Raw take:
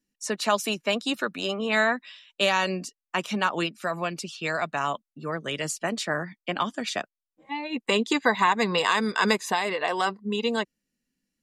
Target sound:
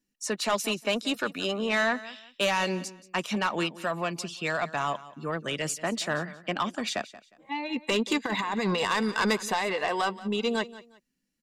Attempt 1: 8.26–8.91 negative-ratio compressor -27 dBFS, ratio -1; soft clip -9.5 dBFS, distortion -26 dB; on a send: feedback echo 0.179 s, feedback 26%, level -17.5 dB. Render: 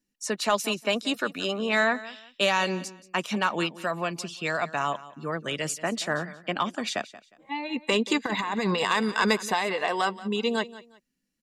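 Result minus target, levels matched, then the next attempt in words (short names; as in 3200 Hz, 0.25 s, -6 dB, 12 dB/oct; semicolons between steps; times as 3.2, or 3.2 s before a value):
soft clip: distortion -12 dB
8.26–8.91 negative-ratio compressor -27 dBFS, ratio -1; soft clip -18.5 dBFS, distortion -14 dB; on a send: feedback echo 0.179 s, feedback 26%, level -17.5 dB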